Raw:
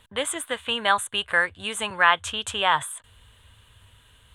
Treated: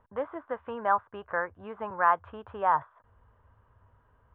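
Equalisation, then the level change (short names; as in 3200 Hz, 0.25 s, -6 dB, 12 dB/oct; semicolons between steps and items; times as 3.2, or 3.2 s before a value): LPF 1200 Hz 24 dB/oct; low shelf 380 Hz -7.5 dB; 0.0 dB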